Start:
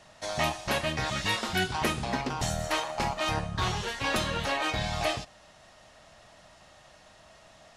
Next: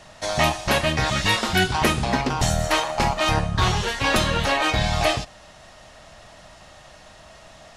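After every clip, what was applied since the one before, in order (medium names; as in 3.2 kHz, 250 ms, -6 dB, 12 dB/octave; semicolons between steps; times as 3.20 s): bass shelf 67 Hz +6.5 dB; trim +8 dB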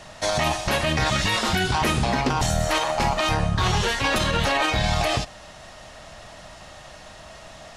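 peak limiter -16 dBFS, peak gain reduction 11 dB; trim +3.5 dB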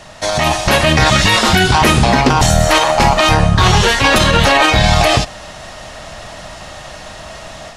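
level rider gain up to 6 dB; trim +5.5 dB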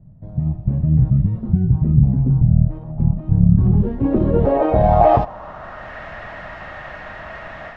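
low-pass sweep 150 Hz -> 1.8 kHz, 3.29–5.97 s; trim -4 dB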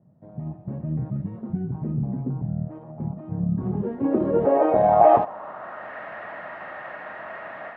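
band-pass 270–2100 Hz; trim -1.5 dB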